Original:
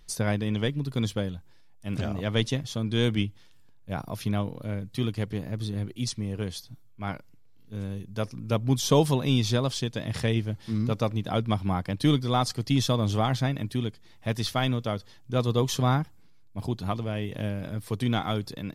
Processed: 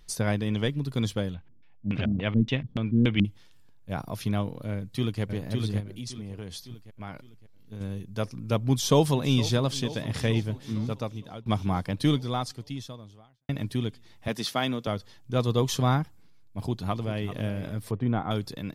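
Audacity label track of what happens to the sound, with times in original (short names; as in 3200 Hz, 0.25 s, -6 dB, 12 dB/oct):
1.340000	3.250000	LFO low-pass square 3.5 Hz 230–2700 Hz
4.730000	5.220000	echo throw 0.56 s, feedback 40%, level -3.5 dB
5.800000	7.810000	compressor 3:1, threshold -35 dBFS
8.600000	9.520000	echo throw 0.46 s, feedback 75%, level -16.5 dB
10.500000	11.460000	fade out, to -20.5 dB
11.990000	13.490000	fade out quadratic
14.280000	14.870000	HPF 160 Hz 24 dB/oct
16.610000	17.350000	echo throw 0.39 s, feedback 15%, level -13 dB
17.910000	18.310000	LPF 1300 Hz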